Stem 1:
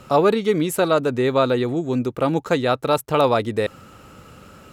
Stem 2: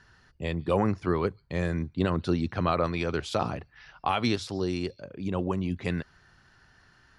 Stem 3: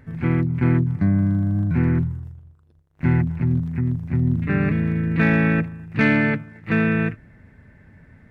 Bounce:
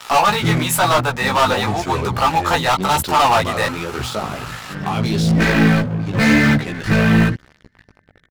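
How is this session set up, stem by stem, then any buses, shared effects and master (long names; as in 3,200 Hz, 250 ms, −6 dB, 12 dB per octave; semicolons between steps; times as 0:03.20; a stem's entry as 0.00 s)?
−3.5 dB, 0.00 s, no send, low shelf with overshoot 560 Hz −14 dB, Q 3
−12.5 dB, 0.80 s, no send, level that may fall only so fast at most 34 dB per second
−3.5 dB, 0.20 s, no send, gate on every frequency bin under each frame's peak −20 dB strong; automatic ducking −24 dB, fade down 1.45 s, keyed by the first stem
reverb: not used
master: leveller curve on the samples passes 5; multi-voice chorus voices 2, 1 Hz, delay 17 ms, depth 3 ms; one half of a high-frequency compander encoder only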